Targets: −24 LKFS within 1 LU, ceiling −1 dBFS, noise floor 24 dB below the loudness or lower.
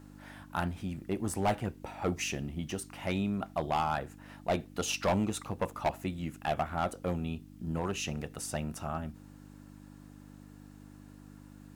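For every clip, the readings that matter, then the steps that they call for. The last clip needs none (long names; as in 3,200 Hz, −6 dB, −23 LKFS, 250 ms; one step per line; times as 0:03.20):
share of clipped samples 0.8%; peaks flattened at −23.0 dBFS; mains hum 50 Hz; hum harmonics up to 300 Hz; level of the hum −49 dBFS; integrated loudness −34.5 LKFS; sample peak −23.0 dBFS; target loudness −24.0 LKFS
→ clipped peaks rebuilt −23 dBFS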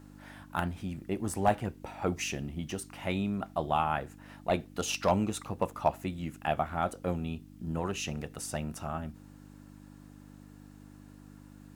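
share of clipped samples 0.0%; mains hum 50 Hz; hum harmonics up to 300 Hz; level of the hum −49 dBFS
→ hum removal 50 Hz, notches 6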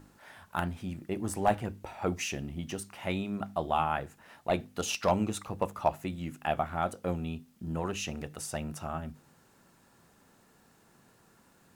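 mains hum none found; integrated loudness −33.5 LKFS; sample peak −13.5 dBFS; target loudness −24.0 LKFS
→ level +9.5 dB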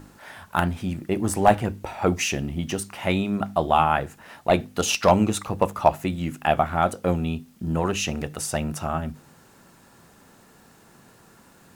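integrated loudness −24.0 LKFS; sample peak −4.0 dBFS; background noise floor −54 dBFS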